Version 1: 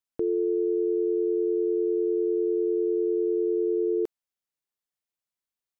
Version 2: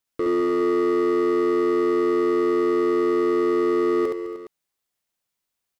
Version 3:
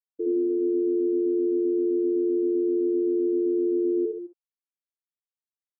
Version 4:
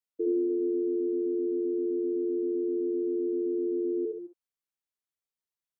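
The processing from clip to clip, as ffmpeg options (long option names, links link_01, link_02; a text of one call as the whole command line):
ffmpeg -i in.wav -filter_complex "[0:a]asoftclip=type=hard:threshold=-28dB,asplit=2[link_01][link_02];[link_02]aecho=0:1:69|207|208|276|305|414:0.708|0.119|0.178|0.119|0.188|0.178[link_03];[link_01][link_03]amix=inputs=2:normalize=0,volume=7.5dB" out.wav
ffmpeg -i in.wav -filter_complex "[0:a]afftfilt=real='re*gte(hypot(re,im),0.316)':imag='im*gte(hypot(re,im),0.316)':win_size=1024:overlap=0.75,acrossover=split=520[link_01][link_02];[link_02]adelay=60[link_03];[link_01][link_03]amix=inputs=2:normalize=0,volume=-1dB" out.wav
ffmpeg -i in.wav -filter_complex "[0:a]adynamicequalizer=threshold=0.0126:dfrequency=380:dqfactor=2.9:tfrequency=380:tqfactor=2.9:attack=5:release=100:ratio=0.375:range=3:mode=cutabove:tftype=bell,acrossover=split=270[link_01][link_02];[link_01]alimiter=level_in=15.5dB:limit=-24dB:level=0:latency=1,volume=-15.5dB[link_03];[link_03][link_02]amix=inputs=2:normalize=0" out.wav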